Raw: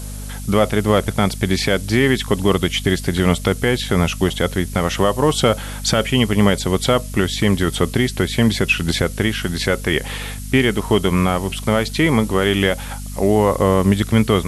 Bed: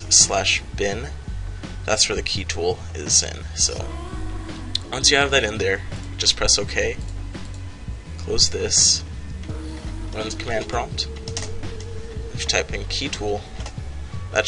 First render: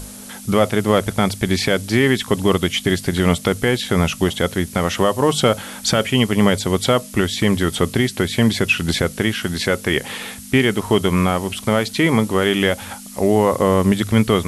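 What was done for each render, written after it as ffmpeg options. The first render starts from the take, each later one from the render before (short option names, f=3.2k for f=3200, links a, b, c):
-af "bandreject=f=50:t=h:w=6,bandreject=f=100:t=h:w=6,bandreject=f=150:t=h:w=6"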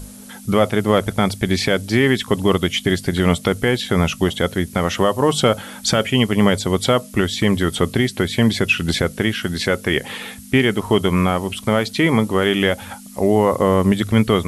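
-af "afftdn=nr=6:nf=-36"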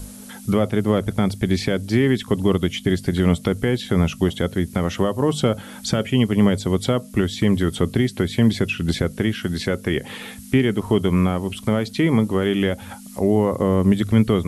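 -filter_complex "[0:a]acrossover=split=420[a][b];[b]acompressor=threshold=-39dB:ratio=1.5[c];[a][c]amix=inputs=2:normalize=0"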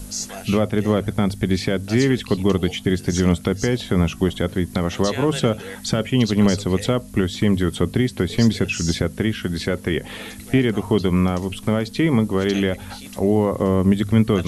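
-filter_complex "[1:a]volume=-15dB[a];[0:a][a]amix=inputs=2:normalize=0"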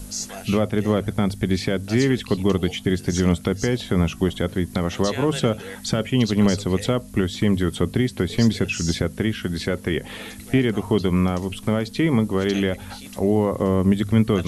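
-af "volume=-1.5dB"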